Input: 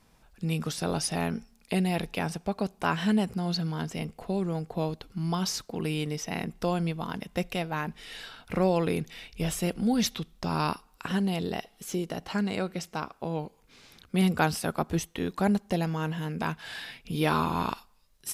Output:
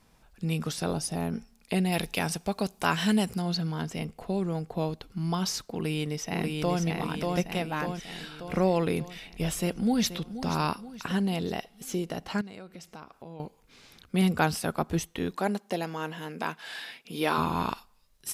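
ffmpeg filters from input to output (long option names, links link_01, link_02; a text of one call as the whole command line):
ffmpeg -i in.wav -filter_complex "[0:a]asplit=3[link_01][link_02][link_03];[link_01]afade=type=out:start_time=0.92:duration=0.02[link_04];[link_02]equalizer=frequency=2200:width_type=o:width=2.6:gain=-9,afade=type=in:start_time=0.92:duration=0.02,afade=type=out:start_time=1.32:duration=0.02[link_05];[link_03]afade=type=in:start_time=1.32:duration=0.02[link_06];[link_04][link_05][link_06]amix=inputs=3:normalize=0,asettb=1/sr,asplit=3[link_07][link_08][link_09];[link_07]atrim=end=1.924[link_10];[link_08]atrim=start=1.92:end=3.42,asetpts=PTS-STARTPTS,afade=type=in:duration=0.004:curve=qsin,afade=type=out:start_time=1.496:duration=0.004:curve=qsin,highshelf=frequency=3100:gain=10[link_11];[link_09]atrim=start=3.416[link_12];[link_10][link_11]acrossfade=duration=0.004:curve1=hsin:curve2=qsin[link_13];[link_13][link_12]acrossfade=duration=0.004:curve1=qsin:curve2=hsin,asplit=2[link_14][link_15];[link_15]afade=type=in:start_time=5.73:duration=0.01,afade=type=out:start_time=6.81:duration=0.01,aecho=0:1:590|1180|1770|2360|2950|3540|4130|4720:0.749894|0.412442|0.226843|0.124764|0.06862|0.037741|0.0207576|0.0114167[link_16];[link_14][link_16]amix=inputs=2:normalize=0,asplit=2[link_17][link_18];[link_18]afade=type=in:start_time=9.6:duration=0.01,afade=type=out:start_time=10.12:duration=0.01,aecho=0:1:480|960|1440|1920|2400:0.237137|0.118569|0.0592843|0.0296422|0.0148211[link_19];[link_17][link_19]amix=inputs=2:normalize=0,asettb=1/sr,asplit=3[link_20][link_21][link_22];[link_20]atrim=end=12.414[link_23];[link_21]atrim=start=12.41:end=13.4,asetpts=PTS-STARTPTS,afade=type=in:duration=0.004:curve=qsin,afade=type=out:start_time=0.986:duration=0.004:curve=qsin,acompressor=threshold=-44dB:ratio=3:attack=3.2:release=140:knee=1:detection=peak[link_24];[link_22]atrim=start=13.396[link_25];[link_23][link_24]acrossfade=duration=0.004:curve1=hsin:curve2=qsin[link_26];[link_26][link_25]acrossfade=duration=0.004:curve1=qsin:curve2=hsin,asettb=1/sr,asplit=3[link_27][link_28][link_29];[link_27]atrim=end=15.374[link_30];[link_28]atrim=start=15.37:end=17.38,asetpts=PTS-STARTPTS,afade=type=in:duration=0.004:curve=qsin,afade=type=out:start_time=2.006:duration=0.004:curve=qsin,highpass=280[link_31];[link_29]atrim=start=17.376[link_32];[link_30][link_31]acrossfade=duration=0.004:curve1=hsin:curve2=qsin[link_33];[link_33][link_32]acrossfade=duration=0.004:curve1=qsin:curve2=hsin" out.wav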